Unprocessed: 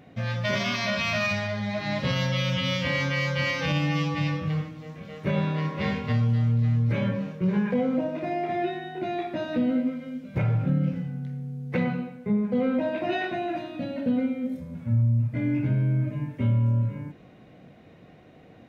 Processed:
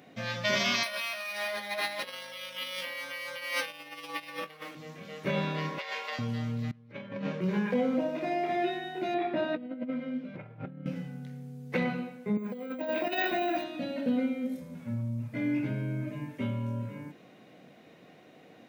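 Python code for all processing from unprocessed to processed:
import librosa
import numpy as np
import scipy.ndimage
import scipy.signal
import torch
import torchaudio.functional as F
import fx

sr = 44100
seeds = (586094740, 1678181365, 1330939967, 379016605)

y = fx.chain(x, sr, fx.over_compress(threshold_db=-31.0, ratio=-0.5),
    fx.highpass(hz=490.0, slope=12),
    fx.resample_linear(factor=3), at=(0.83, 4.75))
y = fx.chain(y, sr, fx.highpass(hz=550.0, slope=24),
    fx.over_compress(threshold_db=-35.0, ratio=-0.5), at=(5.78, 6.19))
y = fx.chain(y, sr, fx.lowpass(hz=3900.0, slope=12),
    fx.over_compress(threshold_db=-32.0, ratio=-0.5), at=(6.71, 7.41))
y = fx.chain(y, sr, fx.over_compress(threshold_db=-29.0, ratio=-0.5),
    fx.air_absorb(metres=330.0), at=(9.14, 10.86))
y = fx.chain(y, sr, fx.highpass(hz=180.0, slope=12),
    fx.over_compress(threshold_db=-29.0, ratio=-0.5),
    fx.resample_bad(factor=2, down='filtered', up='hold'), at=(12.37, 13.64))
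y = scipy.signal.sosfilt(scipy.signal.butter(2, 210.0, 'highpass', fs=sr, output='sos'), y)
y = fx.high_shelf(y, sr, hz=3600.0, db=8.5)
y = y * librosa.db_to_amplitude(-2.0)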